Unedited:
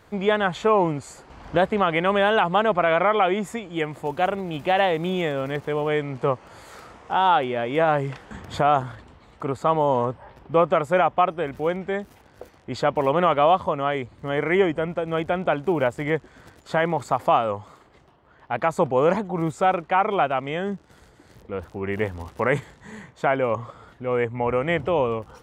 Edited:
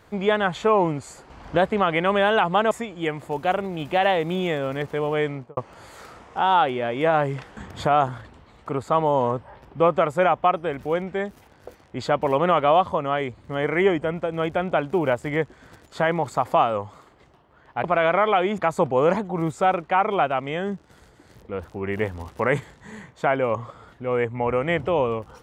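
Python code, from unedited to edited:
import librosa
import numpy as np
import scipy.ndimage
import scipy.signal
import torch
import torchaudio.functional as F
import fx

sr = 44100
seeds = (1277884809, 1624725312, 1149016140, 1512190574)

y = fx.studio_fade_out(x, sr, start_s=6.03, length_s=0.28)
y = fx.edit(y, sr, fx.move(start_s=2.71, length_s=0.74, to_s=18.58), tone=tone)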